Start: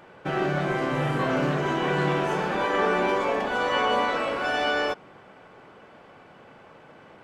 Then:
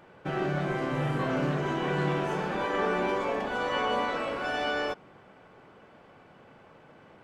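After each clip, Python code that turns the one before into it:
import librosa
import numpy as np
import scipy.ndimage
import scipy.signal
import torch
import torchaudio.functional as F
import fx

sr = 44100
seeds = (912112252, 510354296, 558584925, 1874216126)

y = fx.low_shelf(x, sr, hz=270.0, db=4.5)
y = F.gain(torch.from_numpy(y), -5.5).numpy()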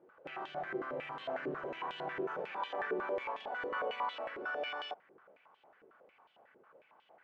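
y = fx.filter_held_bandpass(x, sr, hz=11.0, low_hz=400.0, high_hz=3200.0)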